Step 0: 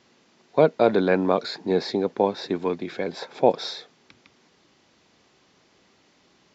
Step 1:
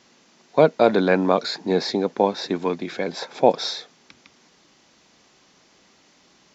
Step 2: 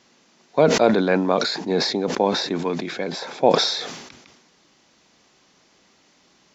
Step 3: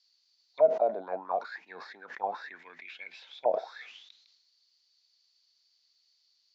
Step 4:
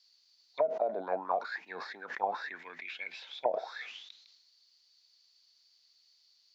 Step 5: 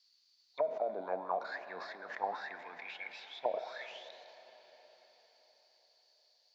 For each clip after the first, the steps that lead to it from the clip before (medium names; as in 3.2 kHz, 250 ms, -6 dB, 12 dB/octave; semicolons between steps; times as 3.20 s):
fifteen-band graphic EQ 100 Hz -7 dB, 400 Hz -3 dB, 6.3 kHz +5 dB; trim +3.5 dB
decay stretcher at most 50 dB/s; trim -1.5 dB
auto-wah 640–4600 Hz, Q 11, down, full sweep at -13.5 dBFS
compression 16:1, threshold -29 dBFS, peak gain reduction 14 dB; trim +3.5 dB
reverberation RT60 4.9 s, pre-delay 44 ms, DRR 10.5 dB; trim -4 dB